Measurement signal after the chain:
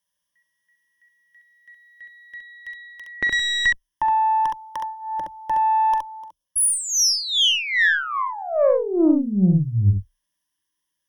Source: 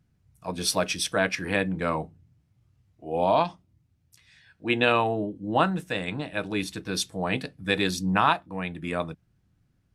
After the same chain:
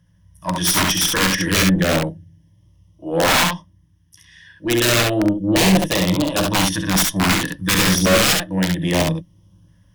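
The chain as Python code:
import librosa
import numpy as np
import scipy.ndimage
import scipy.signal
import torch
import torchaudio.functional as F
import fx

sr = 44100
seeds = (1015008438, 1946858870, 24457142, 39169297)

y = fx.ripple_eq(x, sr, per_octave=1.2, db=15)
y = fx.rider(y, sr, range_db=3, speed_s=2.0)
y = (np.mod(10.0 ** (16.5 / 20.0) * y + 1.0, 2.0) - 1.0) / 10.0 ** (16.5 / 20.0)
y = fx.filter_lfo_notch(y, sr, shape='saw_up', hz=0.31, low_hz=340.0, high_hz=2000.0, q=1.6)
y = fx.cheby_harmonics(y, sr, harmonics=(2,), levels_db=(-7,), full_scale_db=-10.5)
y = fx.fold_sine(y, sr, drive_db=4, ceiling_db=-10.5)
y = fx.room_early_taps(y, sr, ms=(43, 68), db=(-14.0, -3.5))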